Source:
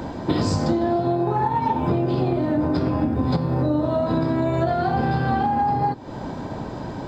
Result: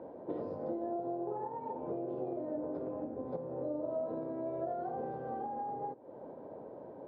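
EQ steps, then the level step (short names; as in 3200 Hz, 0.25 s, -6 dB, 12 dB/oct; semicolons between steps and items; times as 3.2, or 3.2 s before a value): band-pass 510 Hz, Q 3.2; air absorption 230 m; -7.0 dB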